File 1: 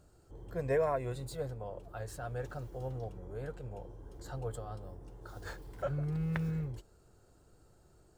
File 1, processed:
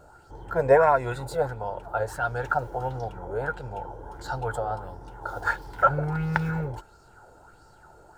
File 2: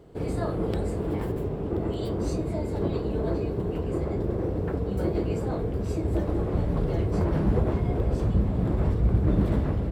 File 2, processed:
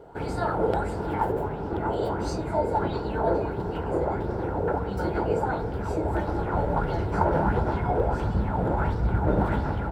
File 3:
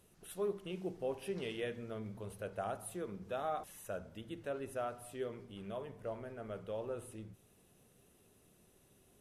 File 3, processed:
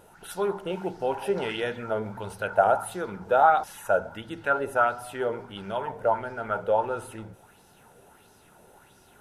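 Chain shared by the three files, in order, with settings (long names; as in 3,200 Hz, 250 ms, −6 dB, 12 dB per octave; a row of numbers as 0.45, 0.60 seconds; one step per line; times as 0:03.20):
tape wow and flutter 27 cents
hollow resonant body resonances 890/1,400 Hz, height 16 dB, ringing for 20 ms
auto-filter bell 1.5 Hz 480–5,400 Hz +10 dB
loudness normalisation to −27 LKFS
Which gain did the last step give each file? +5.5, −2.5, +7.5 decibels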